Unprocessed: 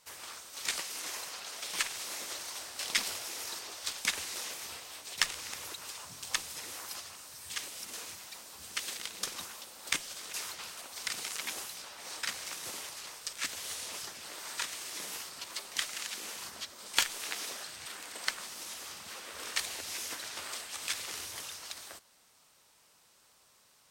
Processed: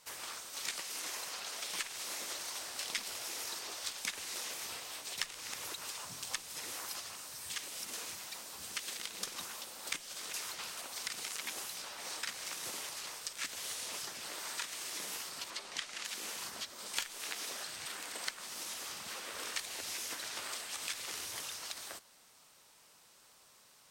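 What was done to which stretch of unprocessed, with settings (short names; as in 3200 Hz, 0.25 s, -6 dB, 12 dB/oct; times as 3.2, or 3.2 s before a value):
15.5–16.05 air absorption 53 m
whole clip: bell 74 Hz -6 dB 0.69 oct; compressor 2.5:1, threshold -41 dBFS; gain +2 dB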